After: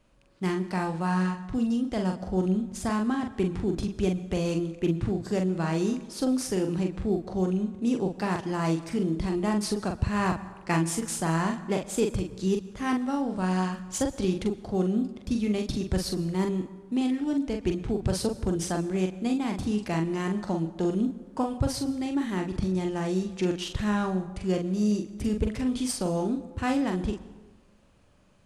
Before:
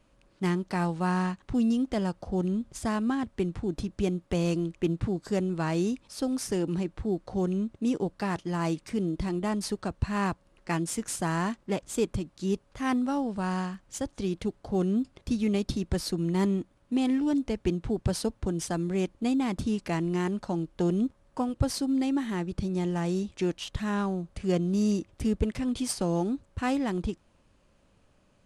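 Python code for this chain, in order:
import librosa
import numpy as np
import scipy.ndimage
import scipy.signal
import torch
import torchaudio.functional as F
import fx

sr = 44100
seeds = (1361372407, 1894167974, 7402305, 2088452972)

y = fx.rider(x, sr, range_db=10, speed_s=0.5)
y = fx.doubler(y, sr, ms=43.0, db=-5)
y = fx.rev_plate(y, sr, seeds[0], rt60_s=1.2, hf_ratio=0.55, predelay_ms=105, drr_db=15.5)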